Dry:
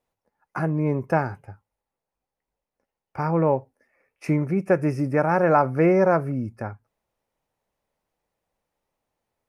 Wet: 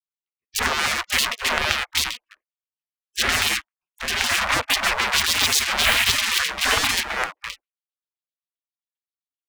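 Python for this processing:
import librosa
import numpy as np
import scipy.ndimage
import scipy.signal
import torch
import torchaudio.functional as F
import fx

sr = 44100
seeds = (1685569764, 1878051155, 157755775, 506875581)

p1 = fx.high_shelf(x, sr, hz=4700.0, db=-3.5)
p2 = p1 + fx.echo_single(p1, sr, ms=828, db=-5.5, dry=0)
p3 = fx.filter_lfo_lowpass(p2, sr, shape='square', hz=7.6, low_hz=400.0, high_hz=2000.0, q=1.4)
p4 = fx.leveller(p3, sr, passes=5)
p5 = fx.rider(p4, sr, range_db=10, speed_s=0.5)
p6 = p4 + F.gain(torch.from_numpy(p5), 1.5).numpy()
p7 = fx.spec_gate(p6, sr, threshold_db=-30, keep='weak')
y = F.gain(torch.from_numpy(p7), 3.0).numpy()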